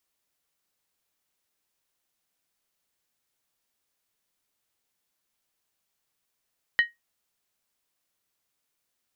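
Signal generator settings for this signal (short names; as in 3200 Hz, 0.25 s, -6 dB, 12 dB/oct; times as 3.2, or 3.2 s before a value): skin hit, lowest mode 1880 Hz, decay 0.17 s, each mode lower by 12 dB, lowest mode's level -13 dB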